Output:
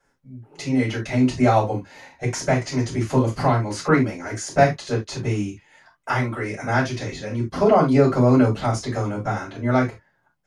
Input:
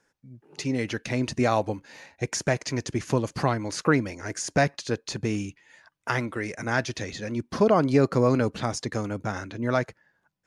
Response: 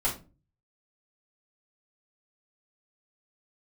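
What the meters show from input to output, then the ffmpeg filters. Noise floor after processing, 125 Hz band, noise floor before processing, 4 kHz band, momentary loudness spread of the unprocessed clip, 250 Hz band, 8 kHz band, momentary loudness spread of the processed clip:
−67 dBFS, +7.0 dB, −75 dBFS, +1.0 dB, 11 LU, +6.0 dB, +0.5 dB, 11 LU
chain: -filter_complex "[1:a]atrim=start_sample=2205,atrim=end_sample=3969[link_01];[0:a][link_01]afir=irnorm=-1:irlink=0,volume=-4.5dB"

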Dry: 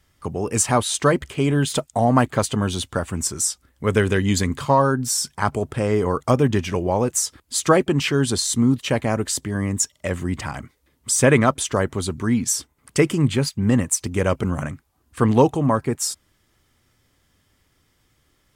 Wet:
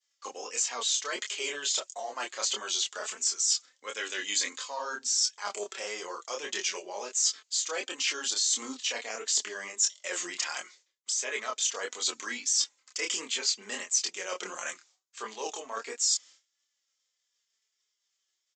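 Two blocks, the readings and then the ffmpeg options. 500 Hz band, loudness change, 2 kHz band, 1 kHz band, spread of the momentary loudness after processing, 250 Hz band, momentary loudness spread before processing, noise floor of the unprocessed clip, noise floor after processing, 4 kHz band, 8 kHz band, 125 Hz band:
−18.5 dB, −9.0 dB, −7.5 dB, −15.0 dB, 11 LU, −28.0 dB, 8 LU, −65 dBFS, −81 dBFS, −0.5 dB, −3.5 dB, below −40 dB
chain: -filter_complex "[0:a]agate=range=-33dB:threshold=-49dB:ratio=3:detection=peak,highpass=frequency=410:width=0.5412,highpass=frequency=410:width=1.3066,acrossover=split=3200[link_01][link_02];[link_02]acompressor=threshold=-26dB:ratio=4:attack=1:release=60[link_03];[link_01][link_03]amix=inputs=2:normalize=0,highshelf=frequency=2200:gain=10.5,areverse,acompressor=threshold=-30dB:ratio=5,areverse,flanger=delay=3.4:depth=2.4:regen=31:speed=0.24:shape=triangular,crystalizer=i=5.5:c=0,flanger=delay=22.5:depth=6.9:speed=1.5,aresample=16000,aresample=44100"

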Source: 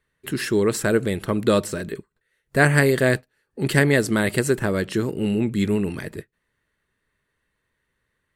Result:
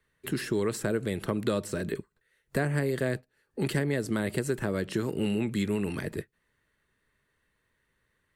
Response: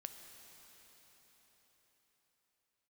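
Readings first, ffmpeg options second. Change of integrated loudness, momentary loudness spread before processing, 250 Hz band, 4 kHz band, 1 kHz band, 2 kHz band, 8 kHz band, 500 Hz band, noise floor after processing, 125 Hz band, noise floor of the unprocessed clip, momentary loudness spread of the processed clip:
−9.0 dB, 13 LU, −7.5 dB, −8.5 dB, −10.5 dB, −13.0 dB, −10.0 dB, −9.0 dB, −76 dBFS, −8.0 dB, −76 dBFS, 7 LU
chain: -filter_complex "[0:a]acrossover=split=120|700[link_01][link_02][link_03];[link_01]acompressor=threshold=-42dB:ratio=4[link_04];[link_02]acompressor=threshold=-28dB:ratio=4[link_05];[link_03]acompressor=threshold=-37dB:ratio=4[link_06];[link_04][link_05][link_06]amix=inputs=3:normalize=0"

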